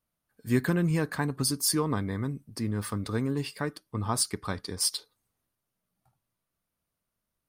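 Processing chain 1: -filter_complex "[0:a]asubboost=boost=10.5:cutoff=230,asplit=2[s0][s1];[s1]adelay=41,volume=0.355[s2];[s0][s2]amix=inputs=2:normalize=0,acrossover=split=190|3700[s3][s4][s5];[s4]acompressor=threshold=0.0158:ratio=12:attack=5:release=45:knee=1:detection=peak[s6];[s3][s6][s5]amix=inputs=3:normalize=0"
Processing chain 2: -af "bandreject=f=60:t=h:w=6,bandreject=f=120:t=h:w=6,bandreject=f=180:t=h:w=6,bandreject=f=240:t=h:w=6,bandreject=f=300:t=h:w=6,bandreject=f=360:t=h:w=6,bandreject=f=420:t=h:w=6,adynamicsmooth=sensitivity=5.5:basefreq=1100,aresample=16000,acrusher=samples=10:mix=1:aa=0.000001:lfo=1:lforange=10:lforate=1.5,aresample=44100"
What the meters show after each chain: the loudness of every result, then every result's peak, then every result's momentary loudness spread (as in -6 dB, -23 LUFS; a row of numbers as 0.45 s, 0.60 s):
-22.5 LUFS, -31.5 LUFS; -9.5 dBFS, -12.5 dBFS; 7 LU, 10 LU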